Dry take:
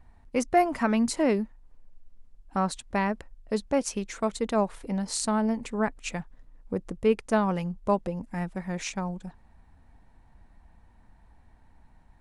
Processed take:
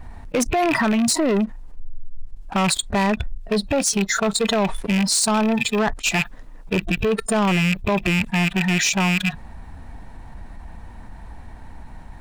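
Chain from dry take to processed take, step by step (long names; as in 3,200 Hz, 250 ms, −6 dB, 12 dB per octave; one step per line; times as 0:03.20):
loose part that buzzes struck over −39 dBFS, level −21 dBFS
noise reduction from a noise print of the clip's start 23 dB
0:05.21–0:06.75: low-shelf EQ 200 Hz −7.5 dB
brickwall limiter −20.5 dBFS, peak gain reduction 11 dB
leveller curve on the samples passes 2
envelope flattener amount 70%
level +5.5 dB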